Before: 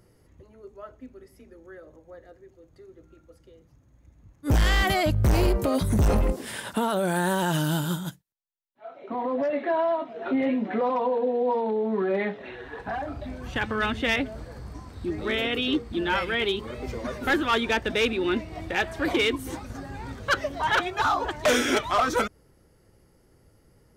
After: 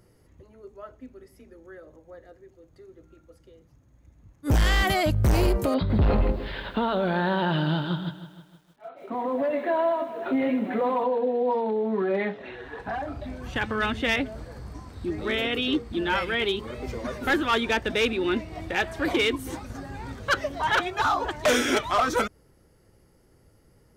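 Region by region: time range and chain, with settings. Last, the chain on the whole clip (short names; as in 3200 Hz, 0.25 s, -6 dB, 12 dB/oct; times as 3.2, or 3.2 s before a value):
5.74–11.04 steep low-pass 4500 Hz 72 dB/oct + lo-fi delay 0.156 s, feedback 55%, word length 9-bit, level -13 dB
whole clip: dry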